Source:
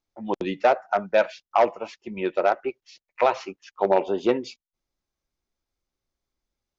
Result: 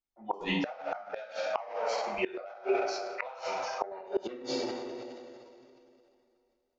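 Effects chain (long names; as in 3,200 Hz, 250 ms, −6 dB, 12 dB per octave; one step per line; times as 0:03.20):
noise reduction from a noise print of the clip's start 17 dB
coupled-rooms reverb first 0.49 s, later 2.7 s, from −20 dB, DRR −5.5 dB
downward compressor 10 to 1, threshold −21 dBFS, peak gain reduction 15 dB
gate with flip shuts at −17 dBFS, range −25 dB
transient designer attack −1 dB, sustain +7 dB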